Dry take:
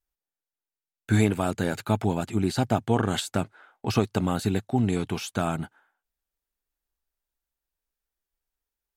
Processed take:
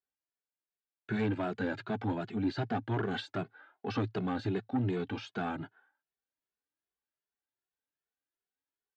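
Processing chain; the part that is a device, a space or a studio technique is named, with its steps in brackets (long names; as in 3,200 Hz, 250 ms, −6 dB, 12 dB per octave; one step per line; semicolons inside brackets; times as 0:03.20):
low-shelf EQ 120 Hz −7 dB
barber-pole flanger into a guitar amplifier (barber-pole flanger 2.3 ms +2.6 Hz; soft clipping −24.5 dBFS, distortion −12 dB; loudspeaker in its box 90–4,400 Hz, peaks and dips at 110 Hz +9 dB, 280 Hz +7 dB, 410 Hz +5 dB, 790 Hz +3 dB, 1,600 Hz +6 dB)
level −4.5 dB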